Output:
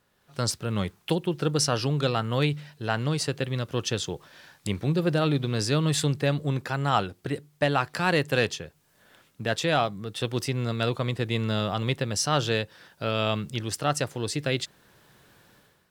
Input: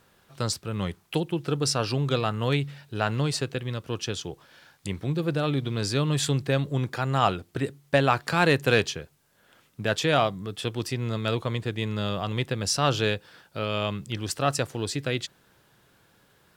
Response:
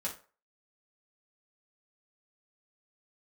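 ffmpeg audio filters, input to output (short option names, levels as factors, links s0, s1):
-af "dynaudnorm=f=100:g=7:m=4.22,asetrate=45938,aresample=44100,volume=0.376"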